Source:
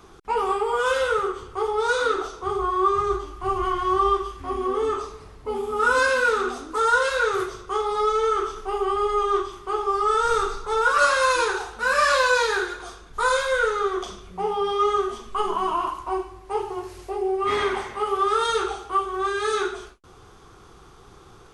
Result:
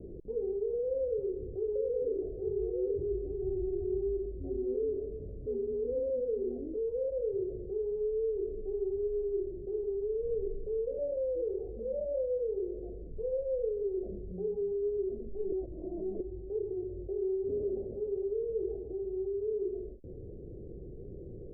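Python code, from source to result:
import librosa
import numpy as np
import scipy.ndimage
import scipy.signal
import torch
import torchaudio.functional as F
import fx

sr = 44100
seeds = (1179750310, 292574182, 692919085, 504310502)

y = fx.echo_single(x, sr, ms=832, db=-5.5, at=(0.92, 4.26))
y = fx.edit(y, sr, fx.reverse_span(start_s=15.52, length_s=0.68), tone=tone)
y = scipy.signal.sosfilt(scipy.signal.butter(12, 580.0, 'lowpass', fs=sr, output='sos'), y)
y = fx.env_flatten(y, sr, amount_pct=50)
y = F.gain(torch.from_numpy(y), -9.0).numpy()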